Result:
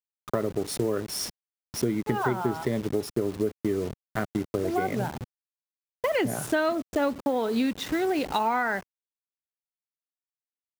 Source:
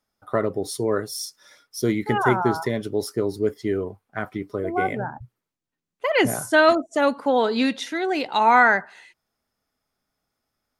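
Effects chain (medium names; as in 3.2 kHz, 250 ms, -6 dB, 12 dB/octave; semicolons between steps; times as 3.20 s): send-on-delta sampling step -32 dBFS; high-pass 140 Hz 6 dB/octave; bass shelf 390 Hz +9.5 dB; compression, threshold -23 dBFS, peak gain reduction 13.5 dB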